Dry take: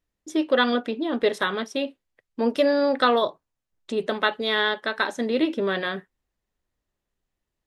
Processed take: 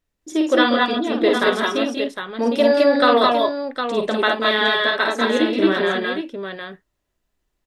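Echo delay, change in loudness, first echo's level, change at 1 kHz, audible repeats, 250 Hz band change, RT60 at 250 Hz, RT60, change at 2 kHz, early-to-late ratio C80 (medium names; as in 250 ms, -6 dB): 51 ms, +5.5 dB, -4.5 dB, +6.5 dB, 3, +6.0 dB, no reverb, no reverb, +6.0 dB, no reverb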